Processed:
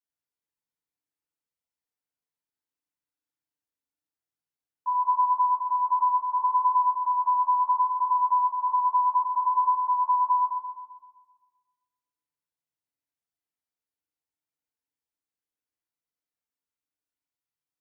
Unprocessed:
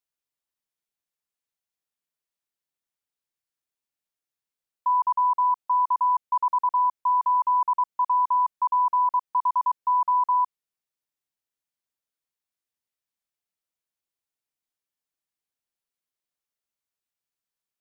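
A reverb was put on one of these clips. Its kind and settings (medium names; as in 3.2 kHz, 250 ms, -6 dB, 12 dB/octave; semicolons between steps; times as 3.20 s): FDN reverb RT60 1.4 s, low-frequency decay 1.55×, high-frequency decay 0.35×, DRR -5.5 dB; trim -10.5 dB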